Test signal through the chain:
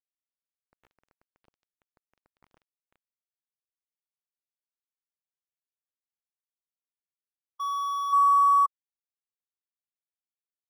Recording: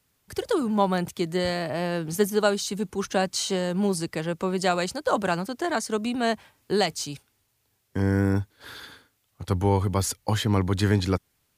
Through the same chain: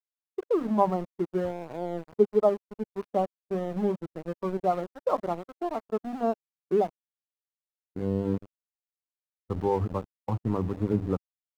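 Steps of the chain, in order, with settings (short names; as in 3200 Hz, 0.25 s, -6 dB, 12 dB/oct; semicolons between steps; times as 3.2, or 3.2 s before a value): brick-wall FIR low-pass 1400 Hz; low shelf 60 Hz -4.5 dB; notches 50/100/150/200/250/300 Hz; sample gate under -27 dBFS; spectral expander 1.5:1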